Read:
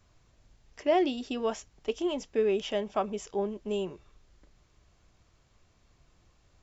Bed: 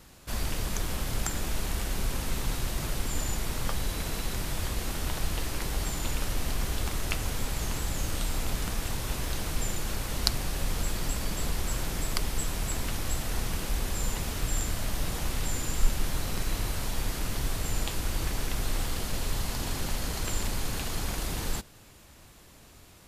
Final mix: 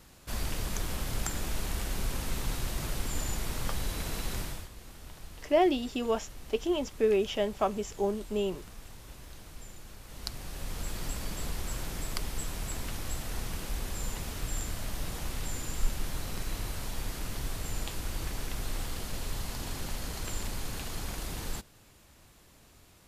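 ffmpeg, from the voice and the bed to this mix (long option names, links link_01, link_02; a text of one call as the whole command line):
ffmpeg -i stem1.wav -i stem2.wav -filter_complex "[0:a]adelay=4650,volume=1dB[link_01];[1:a]volume=9dB,afade=type=out:start_time=4.39:duration=0.29:silence=0.199526,afade=type=in:start_time=10.02:duration=1.01:silence=0.266073[link_02];[link_01][link_02]amix=inputs=2:normalize=0" out.wav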